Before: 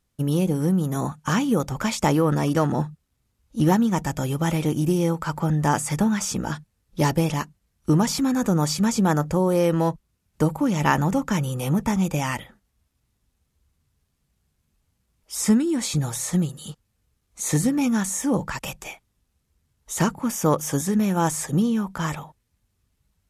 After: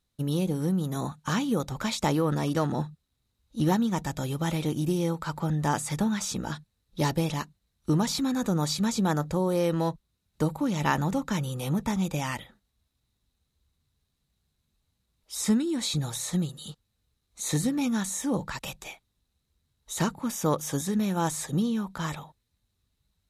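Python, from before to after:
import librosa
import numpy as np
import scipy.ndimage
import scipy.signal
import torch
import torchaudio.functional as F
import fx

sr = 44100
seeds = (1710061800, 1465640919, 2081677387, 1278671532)

y = fx.peak_eq(x, sr, hz=3900.0, db=12.5, octaves=0.25)
y = y * 10.0 ** (-5.5 / 20.0)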